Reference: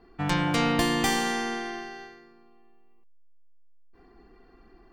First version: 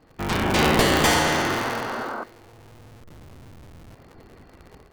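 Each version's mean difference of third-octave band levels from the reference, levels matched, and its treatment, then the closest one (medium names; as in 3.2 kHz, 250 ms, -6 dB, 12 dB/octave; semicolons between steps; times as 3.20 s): 6.0 dB: cycle switcher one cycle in 3, inverted; de-hum 119.8 Hz, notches 16; level rider gain up to 6.5 dB; painted sound noise, 0.91–2.24 s, 210–1600 Hz -31 dBFS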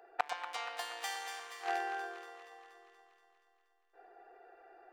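11.5 dB: local Wiener filter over 41 samples; inverse Chebyshev high-pass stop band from 250 Hz, stop band 50 dB; inverted gate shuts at -31 dBFS, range -28 dB; on a send: echo whose repeats swap between lows and highs 119 ms, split 1 kHz, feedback 78%, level -6 dB; on the sum: trim +16 dB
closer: first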